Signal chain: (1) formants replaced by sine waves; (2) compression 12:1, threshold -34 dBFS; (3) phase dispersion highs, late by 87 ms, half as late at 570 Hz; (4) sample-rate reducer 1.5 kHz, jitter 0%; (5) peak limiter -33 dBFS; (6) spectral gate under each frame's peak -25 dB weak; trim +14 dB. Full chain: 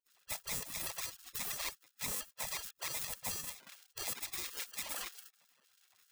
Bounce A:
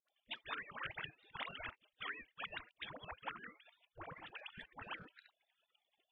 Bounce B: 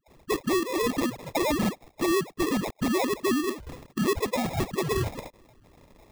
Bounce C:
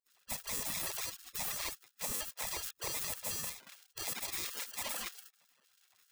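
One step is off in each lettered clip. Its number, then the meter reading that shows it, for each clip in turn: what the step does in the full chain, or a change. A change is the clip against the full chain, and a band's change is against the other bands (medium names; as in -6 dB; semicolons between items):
4, 4 kHz band -4.0 dB; 6, 8 kHz band -18.5 dB; 2, mean gain reduction 8.5 dB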